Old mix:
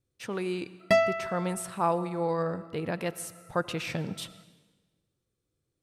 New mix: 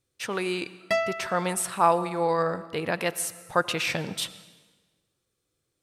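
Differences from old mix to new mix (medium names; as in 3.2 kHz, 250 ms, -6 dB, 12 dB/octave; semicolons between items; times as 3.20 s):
speech +9.0 dB; master: add bass shelf 460 Hz -11 dB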